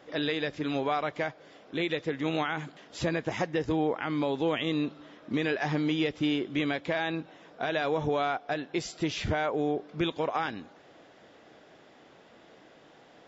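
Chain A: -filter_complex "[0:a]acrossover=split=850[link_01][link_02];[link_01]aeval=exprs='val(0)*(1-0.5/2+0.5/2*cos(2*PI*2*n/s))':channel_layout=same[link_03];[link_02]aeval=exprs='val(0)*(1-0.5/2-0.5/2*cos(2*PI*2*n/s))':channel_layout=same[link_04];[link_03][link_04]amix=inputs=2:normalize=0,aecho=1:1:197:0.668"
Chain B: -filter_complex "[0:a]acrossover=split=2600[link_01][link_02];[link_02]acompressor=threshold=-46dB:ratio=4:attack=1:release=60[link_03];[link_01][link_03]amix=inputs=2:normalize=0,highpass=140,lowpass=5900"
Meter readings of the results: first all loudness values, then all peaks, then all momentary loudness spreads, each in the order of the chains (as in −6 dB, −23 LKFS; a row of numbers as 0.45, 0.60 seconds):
−32.0, −31.5 LKFS; −16.5, −15.5 dBFS; 7, 7 LU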